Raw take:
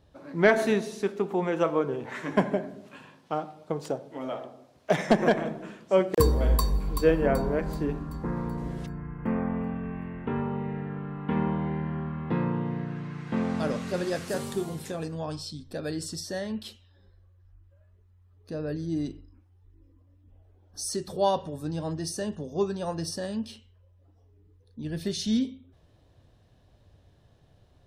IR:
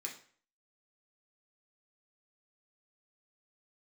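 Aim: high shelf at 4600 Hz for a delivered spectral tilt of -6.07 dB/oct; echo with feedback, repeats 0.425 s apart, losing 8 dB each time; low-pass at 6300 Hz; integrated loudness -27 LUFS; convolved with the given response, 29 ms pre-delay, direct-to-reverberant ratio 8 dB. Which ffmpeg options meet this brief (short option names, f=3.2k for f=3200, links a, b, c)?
-filter_complex "[0:a]lowpass=6.3k,highshelf=f=4.6k:g=-4.5,aecho=1:1:425|850|1275|1700|2125:0.398|0.159|0.0637|0.0255|0.0102,asplit=2[a][b];[1:a]atrim=start_sample=2205,adelay=29[c];[b][c]afir=irnorm=-1:irlink=0,volume=-6.5dB[d];[a][d]amix=inputs=2:normalize=0,volume=1.5dB"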